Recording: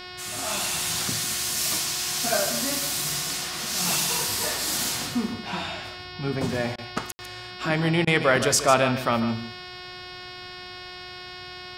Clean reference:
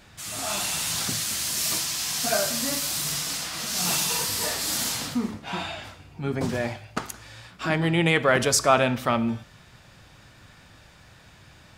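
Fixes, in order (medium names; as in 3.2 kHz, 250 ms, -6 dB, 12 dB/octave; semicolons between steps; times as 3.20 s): de-hum 362.8 Hz, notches 15; room tone fill 7.12–7.19 s; interpolate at 6.76/8.05 s, 21 ms; inverse comb 149 ms -11.5 dB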